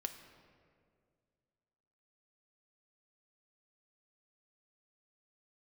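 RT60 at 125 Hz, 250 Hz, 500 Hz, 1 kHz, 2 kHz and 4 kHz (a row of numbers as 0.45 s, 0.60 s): 2.5 s, 2.4 s, 2.4 s, 1.8 s, 1.6 s, 1.2 s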